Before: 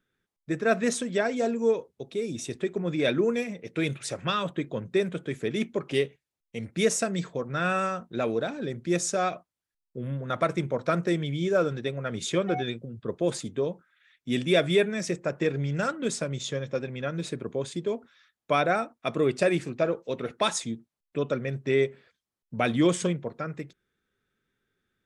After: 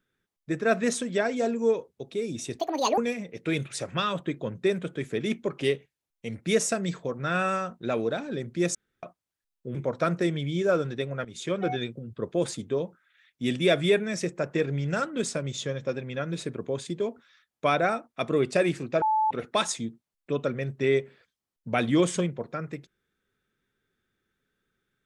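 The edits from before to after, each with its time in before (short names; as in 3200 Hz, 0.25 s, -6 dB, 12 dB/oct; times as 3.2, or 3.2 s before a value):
2.59–3.28 speed 178%
9.05–9.33 room tone
10.05–10.61 cut
12.11–12.55 fade in, from -14 dB
19.88–20.17 bleep 869 Hz -20.5 dBFS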